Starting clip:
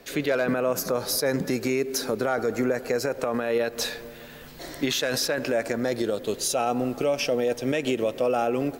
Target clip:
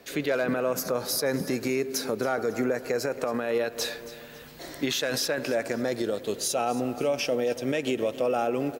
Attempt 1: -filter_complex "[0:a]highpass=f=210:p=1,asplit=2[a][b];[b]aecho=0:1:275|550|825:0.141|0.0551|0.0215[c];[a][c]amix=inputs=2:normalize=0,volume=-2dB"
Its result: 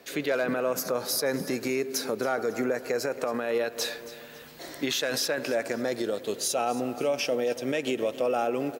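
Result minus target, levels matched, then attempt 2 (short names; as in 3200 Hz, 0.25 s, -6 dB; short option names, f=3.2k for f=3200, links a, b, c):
125 Hz band -4.0 dB
-filter_complex "[0:a]highpass=f=63:p=1,asplit=2[a][b];[b]aecho=0:1:275|550|825:0.141|0.0551|0.0215[c];[a][c]amix=inputs=2:normalize=0,volume=-2dB"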